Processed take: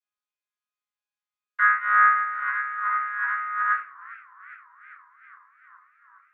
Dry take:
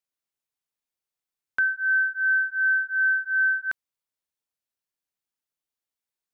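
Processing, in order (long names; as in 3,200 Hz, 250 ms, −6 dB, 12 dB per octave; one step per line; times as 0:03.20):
channel vocoder with a chord as carrier bare fifth, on C#3
high-pass filter 1,100 Hz 12 dB per octave
0:02.08–0:03.66: compressor whose output falls as the input rises −33 dBFS, ratio −1
convolution reverb RT60 0.50 s, pre-delay 7 ms, DRR −5 dB
feedback echo with a swinging delay time 408 ms, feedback 74%, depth 185 cents, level −22 dB
level −6 dB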